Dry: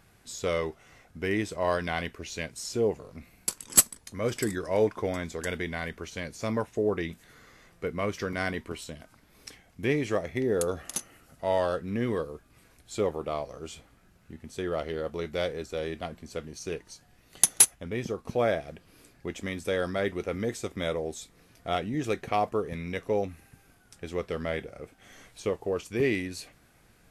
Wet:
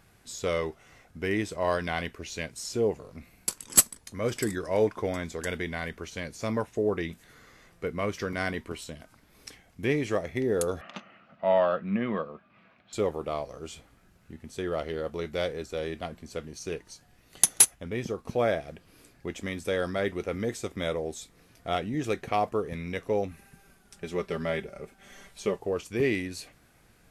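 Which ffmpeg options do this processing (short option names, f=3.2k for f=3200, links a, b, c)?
-filter_complex "[0:a]asettb=1/sr,asplit=3[a][b][c];[a]atrim=end=10.814[d];[b]atrim=start=10.81:end=12.93,asetpts=PTS-STARTPTS,afade=t=in:d=0.004:c=qsin,afade=t=out:st=2.116:d=0.004:c=qsin,highpass=180,equalizer=f=200:t=q:w=4:g=10,equalizer=f=290:t=q:w=4:g=-6,equalizer=f=430:t=q:w=4:g=-7,equalizer=f=630:t=q:w=4:g=6,equalizer=f=1.2k:t=q:w=4:g=6,equalizer=f=2.5k:t=q:w=4:g=4,lowpass=f=3.3k:w=0.5412,lowpass=f=3.3k:w=1.3066[e];[c]atrim=start=12.926[f];[d][e]acrossfade=d=0.004:c1=hsin:c2=qsin[g];[g][f]acrossfade=d=0.004:c1=qsin:c2=hsin,asettb=1/sr,asplit=3[h][i][j];[h]atrim=end=23.314[k];[i]atrim=start=23.31:end=25.59,asetpts=PTS-STARTPTS,afade=t=in:d=0.004:c=qsin,afade=t=out:st=2.276:d=0.004:c=qsin,aecho=1:1:5.1:0.65,atrim=end_sample=100548[l];[j]atrim=start=25.586[m];[k][l]acrossfade=d=0.004:c1=hsin:c2=qsin[n];[n][m]acrossfade=d=0.004:c1=qsin:c2=hsin"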